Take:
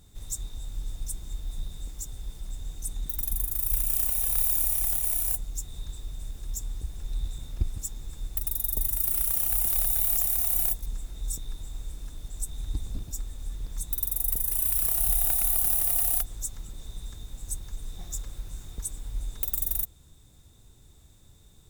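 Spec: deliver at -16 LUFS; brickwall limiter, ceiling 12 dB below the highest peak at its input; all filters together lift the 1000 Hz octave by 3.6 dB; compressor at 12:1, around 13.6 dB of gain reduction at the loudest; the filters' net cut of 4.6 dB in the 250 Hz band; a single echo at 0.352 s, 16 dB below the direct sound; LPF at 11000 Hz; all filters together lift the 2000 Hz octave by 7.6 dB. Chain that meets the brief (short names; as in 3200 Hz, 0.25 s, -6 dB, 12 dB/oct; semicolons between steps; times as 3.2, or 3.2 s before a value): LPF 11000 Hz; bell 250 Hz -7.5 dB; bell 1000 Hz +4 dB; bell 2000 Hz +8.5 dB; compressor 12:1, threshold -35 dBFS; limiter -35 dBFS; echo 0.352 s -16 dB; gain +29.5 dB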